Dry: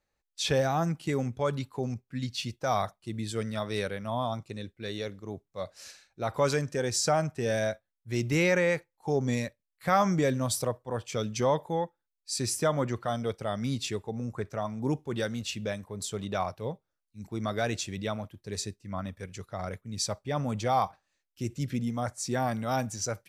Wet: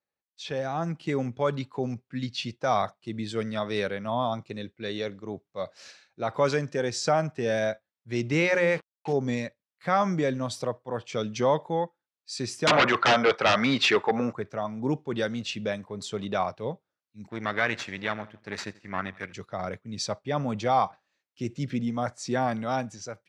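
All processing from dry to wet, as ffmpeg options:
-filter_complex "[0:a]asettb=1/sr,asplit=3[s0][s1][s2];[s0]atrim=end=8.404[s3];[s1]atrim=start=8.4:end=9.13,asetpts=PTS-STARTPTS,afade=t=in:d=0.004:c=qsin,afade=t=out:st=0.726:d=0.004:c=qsin,bandreject=f=60:t=h:w=6,bandreject=f=120:t=h:w=6,bandreject=f=180:t=h:w=6,bandreject=f=240:t=h:w=6,bandreject=f=300:t=h:w=6,bandreject=f=360:t=h:w=6,bandreject=f=420:t=h:w=6,bandreject=f=480:t=h:w=6,bandreject=f=540:t=h:w=6,acrusher=bits=6:mix=0:aa=0.5[s4];[s2]atrim=start=9.126[s5];[s3][s4]acrossfade=d=0.004:c1=hsin:c2=qsin[s6];[s6][s5]acrossfade=d=0.004:c1=qsin:c2=hsin,asettb=1/sr,asplit=3[s7][s8][s9];[s7]atrim=end=12.674[s10];[s8]atrim=start=12.67:end=14.33,asetpts=PTS-STARTPTS,afade=t=in:d=0.004:c=qsin,afade=t=out:st=1.656:d=0.004:c=qsin,bandpass=f=1400:t=q:w=1.2,aeval=exprs='0.158*sin(PI/2*10*val(0)/0.158)':c=same[s11];[s9]atrim=start=14.326[s12];[s10][s11]acrossfade=d=0.004:c1=hsin:c2=qsin[s13];[s13][s12]acrossfade=d=0.004:c1=qsin:c2=hsin,asettb=1/sr,asplit=3[s14][s15][s16];[s14]atrim=end=17.304[s17];[s15]atrim=start=17.3:end=19.33,asetpts=PTS-STARTPTS,afade=t=in:d=0.004:c=qsin,afade=t=out:st=2.026:d=0.004:c=qsin,aeval=exprs='if(lt(val(0),0),0.251*val(0),val(0))':c=same,equalizer=f=1800:w=1.1:g=12,aecho=1:1:84|168|252:0.0794|0.0365|0.0168,atrim=end_sample=89523[s18];[s16]atrim=start=19.326[s19];[s17][s18]acrossfade=d=0.004:c1=hsin:c2=qsin[s20];[s20][s19]acrossfade=d=0.004:c1=qsin:c2=hsin,highpass=140,dynaudnorm=f=230:g=7:m=4.22,lowpass=4700,volume=0.376"

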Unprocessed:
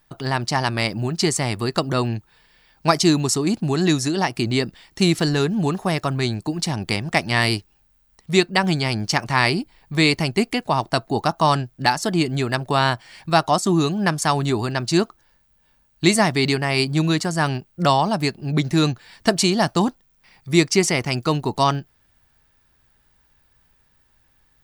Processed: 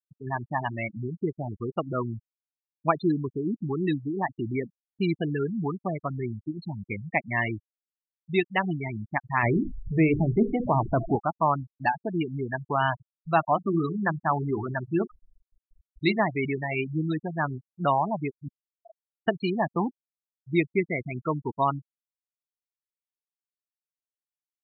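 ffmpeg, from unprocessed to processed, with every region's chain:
-filter_complex "[0:a]asettb=1/sr,asplit=3[s0][s1][s2];[s0]atrim=end=9.434[s3];[s1]atrim=start=9.43:end=11.16,asetpts=PTS-STARTPTS,afade=t=in:d=0.004:c=qsin,afade=t=out:st=1.726:d=0.004:c=qsin,aeval=exprs='val(0)+0.5*0.0794*sgn(val(0))':c=same,tiltshelf=f=840:g=6.5,bandreject=f=50:t=h:w=6,bandreject=f=100:t=h:w=6,bandreject=f=150:t=h:w=6,bandreject=f=200:t=h:w=6,bandreject=f=250:t=h:w=6,bandreject=f=300:t=h:w=6,bandreject=f=350:t=h:w=6,bandreject=f=400:t=h:w=6,bandreject=f=450:t=h:w=6[s4];[s2]atrim=start=11.156[s5];[s3][s4]acrossfade=d=0.004:c1=hsin:c2=qsin[s6];[s6][s5]acrossfade=d=0.004:c1=qsin:c2=hsin,asettb=1/sr,asplit=3[s7][s8][s9];[s7]atrim=end=12.794[s10];[s8]atrim=start=12.79:end=16.2,asetpts=PTS-STARTPTS,afade=t=in:d=0.004:c=qsin,afade=t=out:st=3.406:d=0.004:c=qsin,aeval=exprs='val(0)+0.5*0.0447*sgn(val(0))':c=same,highshelf=f=5800:g=3,bandreject=f=60:t=h:w=6,bandreject=f=120:t=h:w=6,bandreject=f=180:t=h:w=6,bandreject=f=240:t=h:w=6,bandreject=f=300:t=h:w=6,bandreject=f=360:t=h:w=6,bandreject=f=420:t=h:w=6,bandreject=f=480:t=h:w=6[s11];[s9]atrim=start=16.196[s12];[s10][s11]acrossfade=d=0.004:c1=hsin:c2=qsin[s13];[s13][s12]acrossfade=d=0.004:c1=qsin:c2=hsin,asettb=1/sr,asplit=3[s14][s15][s16];[s14]atrim=end=18.484[s17];[s15]atrim=start=18.48:end=19.28,asetpts=PTS-STARTPTS,afade=t=in:d=0.004:c=qsin,afade=t=out:st=0.796:d=0.004:c=qsin,aecho=1:1:6.8:0.81,atrim=end_sample=35280,afreqshift=-78,asuperpass=centerf=650:order=8:qfactor=7.8[s18];[s16]atrim=start=19.276[s19];[s17][s18]acrossfade=d=0.004:c1=hsin:c2=qsin[s20];[s20][s19]acrossfade=d=0.004:c1=qsin:c2=hsin,lowpass=f=3800:w=0.5412,lowpass=f=3800:w=1.3066,afftfilt=real='re*gte(hypot(re,im),0.224)':imag='im*gte(hypot(re,im),0.224)':win_size=1024:overlap=0.75,lowshelf=f=360:g=-5,volume=0.596"

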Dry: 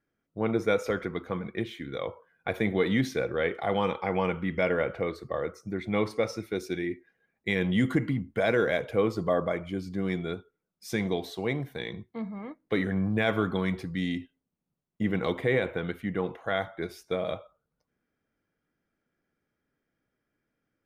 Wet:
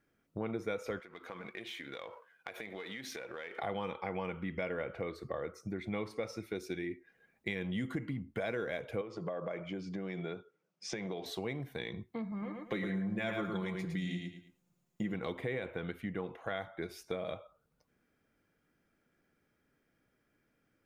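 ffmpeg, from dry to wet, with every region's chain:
-filter_complex "[0:a]asettb=1/sr,asplit=3[s0][s1][s2];[s0]atrim=end=1.004[s3];[s1]atrim=start=1:end=3.58,asetpts=PTS-STARTPTS,afade=t=in:d=0.004:c=qsin,afade=t=out:st=2.576:d=0.004:c=qsin,aeval=exprs='if(lt(val(0),0),0.708*val(0),val(0))':c=same,highpass=f=910:p=1,acompressor=threshold=0.00631:ratio=5:attack=3.2:release=140:knee=1:detection=peak[s4];[s2]atrim=start=3.576[s5];[s3][s4]acrossfade=d=0.004:c1=hsin:c2=qsin[s6];[s6][s5]acrossfade=d=0.004:c1=qsin:c2=hsin,asettb=1/sr,asplit=3[s7][s8][s9];[s7]atrim=end=9.014[s10];[s8]atrim=start=9.01:end=11.26,asetpts=PTS-STARTPTS,afade=t=in:d=0.004:c=qsin,afade=t=out:st=2.246:d=0.004:c=qsin,acompressor=threshold=0.0398:ratio=10:attack=3.2:release=140:knee=1:detection=peak,highpass=f=130:w=0.5412,highpass=f=130:w=1.3066,equalizer=f=240:t=q:w=4:g=-8,equalizer=f=560:t=q:w=4:g=4,equalizer=f=4100:t=q:w=4:g=-6,lowpass=f=6300:w=0.5412,lowpass=f=6300:w=1.3066[s11];[s9]atrim=start=11.256[s12];[s10][s11]acrossfade=d=0.004:c1=hsin:c2=qsin[s13];[s13][s12]acrossfade=d=0.004:c1=qsin:c2=hsin,asettb=1/sr,asplit=3[s14][s15][s16];[s14]atrim=end=12.314[s17];[s15]atrim=start=12.31:end=15.14,asetpts=PTS-STARTPTS,afade=t=in:d=0.004:c=qsin,afade=t=out:st=2.826:d=0.004:c=qsin,equalizer=f=6900:w=6.1:g=8.5,aecho=1:1:5.7:0.57,atrim=end_sample=124803,aecho=1:1:109|218|327:0.562|0.112|0.0225,atrim=end_sample=124803[s18];[s16]atrim=start=15.136[s19];[s17][s18]acrossfade=d=0.004:c1=hsin:c2=qsin[s20];[s20][s19]acrossfade=d=0.004:c1=qsin:c2=hsin,equalizer=f=2500:t=o:w=0.31:g=2.5,acompressor=threshold=0.00631:ratio=3,volume=1.68"

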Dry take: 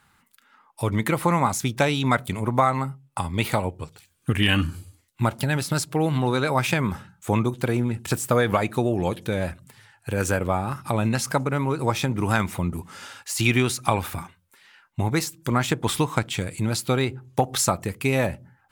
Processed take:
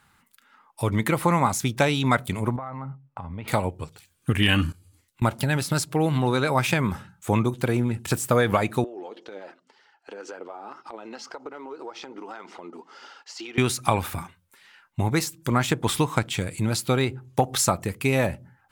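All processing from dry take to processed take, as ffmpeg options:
-filter_complex "[0:a]asettb=1/sr,asplit=3[s0][s1][s2];[s0]atrim=end=2.564[s3];[s1]atrim=start=2.56:end=3.48,asetpts=PTS-STARTPTS,afade=t=in:d=0.004:c=qsin,afade=t=out:st=0.916:d=0.004:c=qsin,lowpass=1600,equalizer=f=370:w=6.9:g=-11.5,acompressor=threshold=0.0316:ratio=10:attack=3.2:release=140:knee=1:detection=peak[s4];[s2]atrim=start=3.476[s5];[s3][s4]acrossfade=d=0.004:c1=hsin:c2=qsin[s6];[s6][s5]acrossfade=d=0.004:c1=qsin:c2=hsin,asettb=1/sr,asplit=3[s7][s8][s9];[s7]atrim=end=4.724[s10];[s8]atrim=start=4.72:end=5.22,asetpts=PTS-STARTPTS,afade=t=in:d=0.004:c=qsin,afade=t=out:st=0.496:d=0.004:c=qsin,equalizer=f=660:w=7.7:g=-7.5,acompressor=threshold=0.00282:ratio=8:attack=3.2:release=140:knee=1:detection=peak[s11];[s9]atrim=start=5.216[s12];[s10][s11]acrossfade=d=0.004:c1=hsin:c2=qsin[s13];[s13][s12]acrossfade=d=0.004:c1=qsin:c2=hsin,asettb=1/sr,asplit=3[s14][s15][s16];[s14]atrim=end=8.844[s17];[s15]atrim=start=8.84:end=13.58,asetpts=PTS-STARTPTS,afade=t=in:d=0.004:c=qsin,afade=t=out:st=4.736:d=0.004:c=qsin,highpass=f=340:w=0.5412,highpass=f=340:w=1.3066,equalizer=f=580:t=q:w=4:g=-6,equalizer=f=1100:t=q:w=4:g=-5,equalizer=f=1700:t=q:w=4:g=-7,equalizer=f=2400:t=q:w=4:g=-10,equalizer=f=3700:t=q:w=4:g=-9,lowpass=f=4800:w=0.5412,lowpass=f=4800:w=1.3066,acompressor=threshold=0.0178:ratio=6:attack=3.2:release=140:knee=1:detection=peak,aphaser=in_gain=1:out_gain=1:delay=4.8:decay=0.34:speed=1.9:type=triangular[s18];[s16]atrim=start=13.576[s19];[s17][s18]acrossfade=d=0.004:c1=hsin:c2=qsin[s20];[s20][s19]acrossfade=d=0.004:c1=qsin:c2=hsin"

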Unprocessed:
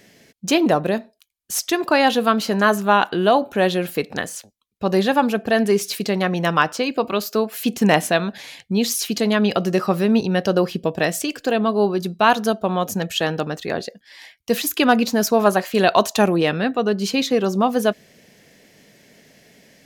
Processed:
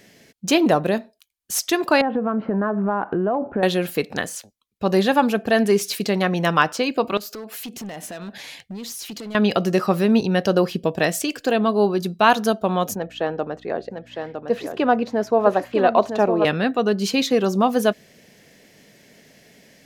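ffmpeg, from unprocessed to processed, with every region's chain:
-filter_complex "[0:a]asettb=1/sr,asplit=3[s0][s1][s2];[s0]atrim=end=2.014[s3];[s1]atrim=start=2.01:end=3.63,asetpts=PTS-STARTPTS,afade=t=in:d=0.004:c=qsin,afade=t=out:st=1.616:d=0.004:c=qsin,lowpass=f=1800:w=0.5412,lowpass=f=1800:w=1.3066,tiltshelf=f=1400:g=6,acompressor=threshold=0.126:ratio=6:attack=3.2:release=140:knee=1:detection=peak[s4];[s2]atrim=start=3.626[s5];[s3][s4]acrossfade=d=0.004:c1=hsin:c2=qsin[s6];[s6][s5]acrossfade=d=0.004:c1=qsin:c2=hsin,asettb=1/sr,asplit=3[s7][s8][s9];[s7]atrim=end=7.174[s10];[s8]atrim=start=7.17:end=9.35,asetpts=PTS-STARTPTS,afade=t=in:d=0.004:c=qsin,afade=t=out:st=2.176:d=0.004:c=qsin,acompressor=threshold=0.0355:ratio=6:attack=3.2:release=140:knee=1:detection=peak,volume=28.2,asoftclip=hard,volume=0.0355[s11];[s9]atrim=start=9.346[s12];[s10][s11]acrossfade=d=0.004:c1=hsin:c2=qsin[s13];[s13][s12]acrossfade=d=0.004:c1=qsin:c2=hsin,asettb=1/sr,asplit=3[s14][s15][s16];[s14]atrim=end=12.954[s17];[s15]atrim=start=12.95:end=16.45,asetpts=PTS-STARTPTS,afade=t=in:d=0.004:c=qsin,afade=t=out:st=3.496:d=0.004:c=qsin,aeval=exprs='val(0)+0.0112*(sin(2*PI*60*n/s)+sin(2*PI*2*60*n/s)/2+sin(2*PI*3*60*n/s)/3+sin(2*PI*4*60*n/s)/4+sin(2*PI*5*60*n/s)/5)':c=same,bandpass=f=580:t=q:w=0.77,aecho=1:1:958:0.473,atrim=end_sample=154350[s18];[s16]atrim=start=16.446[s19];[s17][s18]acrossfade=d=0.004:c1=hsin:c2=qsin[s20];[s20][s19]acrossfade=d=0.004:c1=qsin:c2=hsin"

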